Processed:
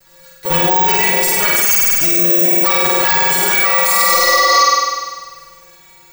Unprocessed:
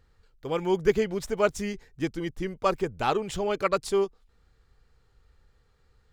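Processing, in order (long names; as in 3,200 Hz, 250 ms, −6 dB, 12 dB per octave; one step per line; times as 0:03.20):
lower of the sound and its delayed copy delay 7.5 ms
spectral tilt +3 dB per octave
stiff-string resonator 170 Hz, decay 0.5 s, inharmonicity 0.008
bad sample-rate conversion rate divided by 2×, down filtered, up zero stuff
0:01.62–0:02.52: high shelf with overshoot 5,000 Hz +7.5 dB, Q 1.5
0:03.90–0:04.64: healed spectral selection 300–6,900 Hz before
on a send: flutter between parallel walls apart 8.5 metres, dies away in 1.5 s
on the sum: boost into a limiter +35 dB
level −1 dB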